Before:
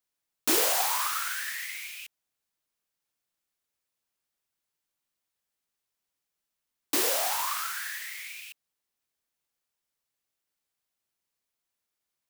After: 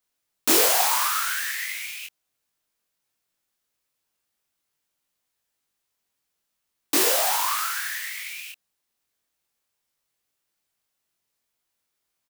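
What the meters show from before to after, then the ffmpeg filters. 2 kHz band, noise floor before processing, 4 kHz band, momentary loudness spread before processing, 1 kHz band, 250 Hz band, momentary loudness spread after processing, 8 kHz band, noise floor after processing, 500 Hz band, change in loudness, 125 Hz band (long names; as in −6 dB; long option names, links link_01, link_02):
+5.5 dB, below −85 dBFS, +6.0 dB, 17 LU, +6.0 dB, +6.0 dB, 17 LU, +6.0 dB, −80 dBFS, +6.0 dB, +6.0 dB, can't be measured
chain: -filter_complex "[0:a]asplit=2[link_01][link_02];[link_02]adelay=21,volume=-3dB[link_03];[link_01][link_03]amix=inputs=2:normalize=0,volume=4dB"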